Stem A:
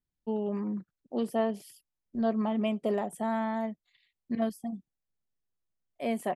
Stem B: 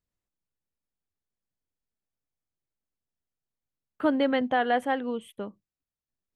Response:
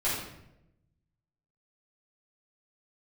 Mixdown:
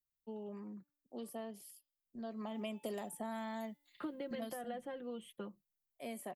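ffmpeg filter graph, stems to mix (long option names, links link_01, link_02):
-filter_complex "[0:a]aemphasis=mode=production:type=50fm,bandreject=frequency=290.1:width_type=h:width=4,bandreject=frequency=580.2:width_type=h:width=4,bandreject=frequency=870.3:width_type=h:width=4,bandreject=frequency=1160.4:width_type=h:width=4,bandreject=frequency=1450.5:width_type=h:width=4,bandreject=frequency=1740.6:width_type=h:width=4,bandreject=frequency=2030.7:width_type=h:width=4,bandreject=frequency=2320.8:width_type=h:width=4,bandreject=frequency=2610.9:width_type=h:width=4,bandreject=frequency=2901:width_type=h:width=4,bandreject=frequency=3191.1:width_type=h:width=4,bandreject=frequency=3481.2:width_type=h:width=4,bandreject=frequency=3771.3:width_type=h:width=4,bandreject=frequency=4061.4:width_type=h:width=4,bandreject=frequency=4351.5:width_type=h:width=4,bandreject=frequency=4641.6:width_type=h:width=4,bandreject=frequency=4931.7:width_type=h:width=4,volume=-1.5dB,afade=type=in:start_time=2.29:duration=0.6:silence=0.266073,afade=type=out:start_time=4.17:duration=0.53:silence=0.354813[link_01];[1:a]acrossover=split=450[link_02][link_03];[link_03]acompressor=threshold=-36dB:ratio=5[link_04];[link_02][link_04]amix=inputs=2:normalize=0,aecho=1:1:5.7:0.73,agate=range=-33dB:threshold=-51dB:ratio=3:detection=peak,volume=-8dB[link_05];[link_01][link_05]amix=inputs=2:normalize=0,acrossover=split=260|2700[link_06][link_07][link_08];[link_06]acompressor=threshold=-50dB:ratio=4[link_09];[link_07]acompressor=threshold=-43dB:ratio=4[link_10];[link_08]acompressor=threshold=-51dB:ratio=4[link_11];[link_09][link_10][link_11]amix=inputs=3:normalize=0"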